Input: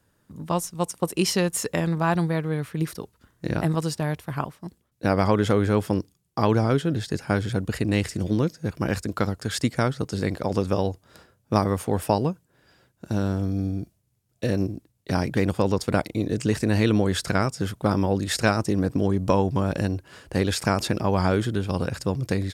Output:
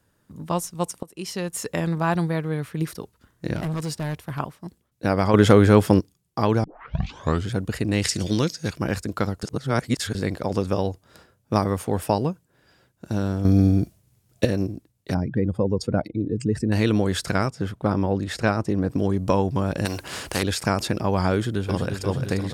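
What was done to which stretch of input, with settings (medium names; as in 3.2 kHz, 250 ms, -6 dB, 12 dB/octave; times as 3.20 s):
1.03–1.86 s: fade in, from -23 dB
3.56–4.40 s: hard clipper -24 dBFS
5.34–6.00 s: gain +7 dB
6.64 s: tape start 0.85 s
8.02–8.77 s: peaking EQ 5.1 kHz +14 dB 2.7 oct
9.43–10.15 s: reverse
13.45–14.45 s: gain +9.5 dB
15.14–16.72 s: spectral contrast enhancement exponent 1.8
17.49–18.89 s: treble shelf 4 kHz -12 dB
19.85–20.43 s: spectrum-flattening compressor 2:1
21.33–22.02 s: echo throw 350 ms, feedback 65%, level -6.5 dB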